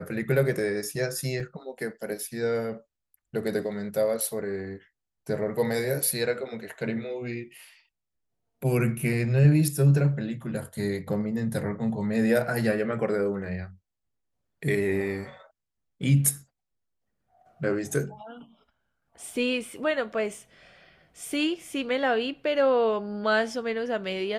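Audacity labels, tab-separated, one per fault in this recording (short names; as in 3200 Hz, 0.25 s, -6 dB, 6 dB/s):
1.400000	1.400000	gap 2.8 ms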